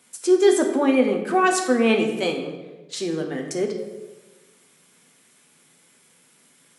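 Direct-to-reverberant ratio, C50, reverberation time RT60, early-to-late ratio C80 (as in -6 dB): 2.0 dB, 6.5 dB, 1.2 s, 9.0 dB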